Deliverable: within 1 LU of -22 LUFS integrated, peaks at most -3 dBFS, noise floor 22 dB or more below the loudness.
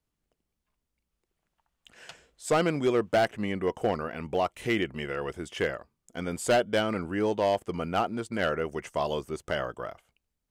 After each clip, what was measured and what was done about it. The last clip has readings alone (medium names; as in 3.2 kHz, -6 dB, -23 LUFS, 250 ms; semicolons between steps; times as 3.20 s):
clipped samples 0.5%; clipping level -17.5 dBFS; loudness -29.0 LUFS; peak level -17.5 dBFS; loudness target -22.0 LUFS
-> clip repair -17.5 dBFS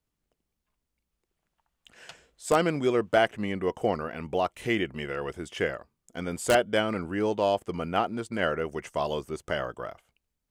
clipped samples 0.0%; loudness -28.5 LUFS; peak level -8.5 dBFS; loudness target -22.0 LUFS
-> trim +6.5 dB; peak limiter -3 dBFS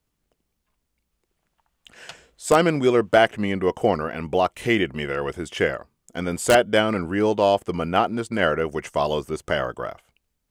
loudness -22.0 LUFS; peak level -3.0 dBFS; noise floor -77 dBFS